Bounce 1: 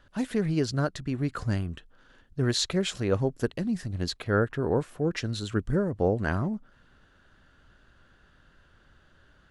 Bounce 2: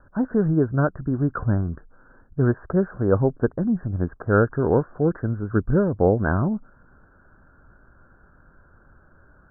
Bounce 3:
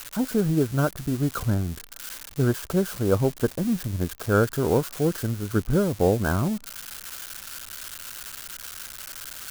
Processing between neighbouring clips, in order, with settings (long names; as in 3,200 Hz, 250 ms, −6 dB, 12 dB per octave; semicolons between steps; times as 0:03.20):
Butterworth low-pass 1,600 Hz 96 dB per octave; level +6.5 dB
spike at every zero crossing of −20 dBFS; in parallel at −5.5 dB: floating-point word with a short mantissa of 2 bits; on the sum: level −6 dB